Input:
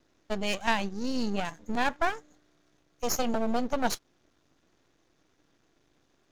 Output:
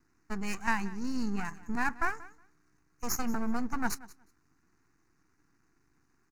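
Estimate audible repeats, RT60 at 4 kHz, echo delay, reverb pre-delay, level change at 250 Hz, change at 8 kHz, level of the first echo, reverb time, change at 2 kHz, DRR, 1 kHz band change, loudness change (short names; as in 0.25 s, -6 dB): 1, none, 0.182 s, none, -2.0 dB, -3.0 dB, -19.5 dB, none, -1.5 dB, none, -4.5 dB, -3.5 dB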